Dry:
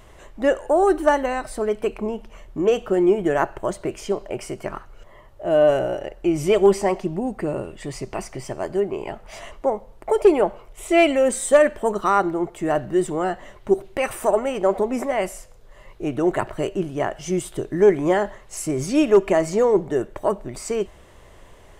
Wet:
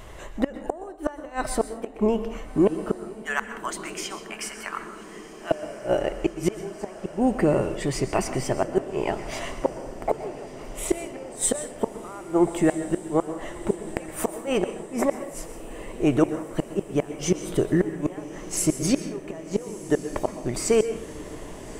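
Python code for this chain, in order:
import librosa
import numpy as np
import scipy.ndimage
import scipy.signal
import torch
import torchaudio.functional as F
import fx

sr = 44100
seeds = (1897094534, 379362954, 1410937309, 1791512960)

y = fx.highpass(x, sr, hz=1100.0, slope=24, at=(3.22, 5.51))
y = fx.gate_flip(y, sr, shuts_db=-14.0, range_db=-28)
y = fx.echo_diffused(y, sr, ms=1301, feedback_pct=66, wet_db=-15.5)
y = fx.rev_plate(y, sr, seeds[0], rt60_s=0.52, hf_ratio=0.75, predelay_ms=110, drr_db=11.0)
y = y * 10.0 ** (5.0 / 20.0)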